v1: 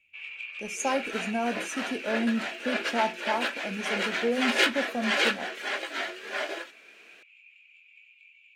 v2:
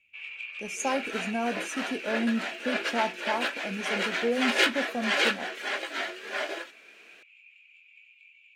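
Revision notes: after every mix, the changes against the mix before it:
reverb: off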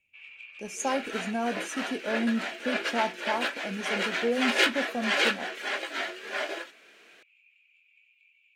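first sound -7.5 dB

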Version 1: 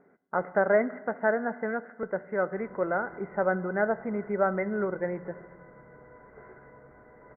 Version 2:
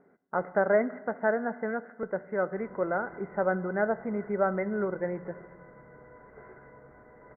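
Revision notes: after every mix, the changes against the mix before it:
speech: add distance through air 280 m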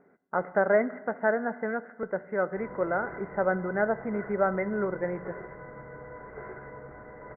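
speech: remove distance through air 280 m; background +8.5 dB

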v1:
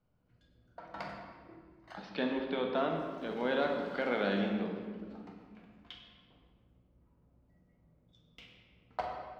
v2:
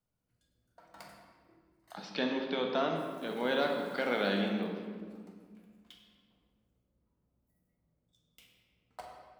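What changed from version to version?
background -11.0 dB; master: remove distance through air 220 m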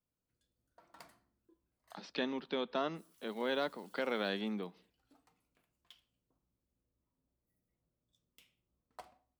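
reverb: off

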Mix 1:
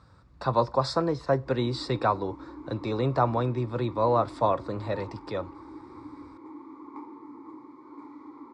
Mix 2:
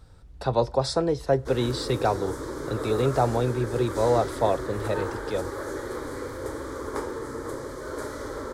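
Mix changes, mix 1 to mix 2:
background: remove vowel filter u; master: remove cabinet simulation 100–6700 Hz, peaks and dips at 430 Hz -7 dB, 750 Hz -4 dB, 1.1 kHz +10 dB, 3.1 kHz -9 dB, 6.1 kHz -7 dB

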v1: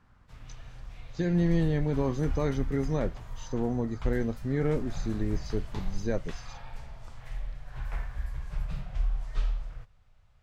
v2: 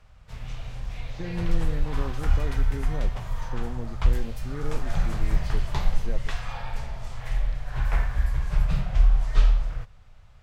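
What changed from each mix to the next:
speech -7.5 dB; background +10.5 dB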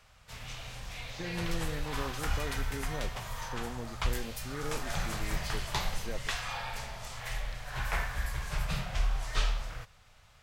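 master: add tilt EQ +2.5 dB/octave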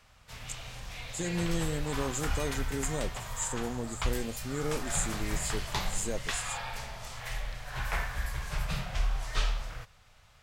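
speech: remove rippled Chebyshev low-pass 6.2 kHz, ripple 6 dB

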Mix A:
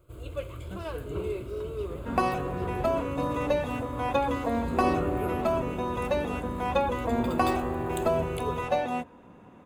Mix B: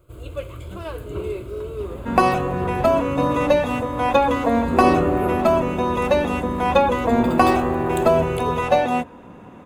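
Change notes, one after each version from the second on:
first sound +4.5 dB; second sound +9.5 dB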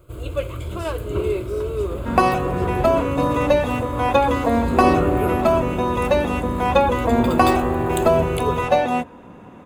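speech: remove low-pass 2.7 kHz; first sound +7.5 dB; reverb: off

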